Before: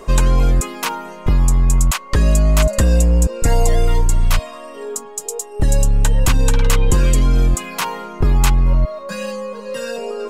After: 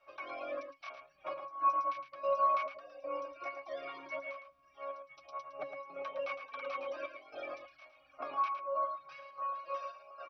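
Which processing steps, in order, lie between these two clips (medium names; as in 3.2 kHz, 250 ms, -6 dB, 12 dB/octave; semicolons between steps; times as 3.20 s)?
spectral peaks clipped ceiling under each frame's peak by 25 dB; reverb removal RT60 0.89 s; Chebyshev band-pass 620–7100 Hz, order 3; reverb removal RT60 0.74 s; compression 4:1, threshold -22 dBFS, peak gain reduction 10 dB; crackle 150 per s -41 dBFS; trance gate "..xxxxx..xxxxxx." 168 bpm -12 dB; flange 0.27 Hz, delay 2.1 ms, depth 4.7 ms, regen +38%; pitch-class resonator C#, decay 0.15 s; echo from a far wall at 19 m, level -8 dB; trim +6.5 dB; MP2 48 kbps 48 kHz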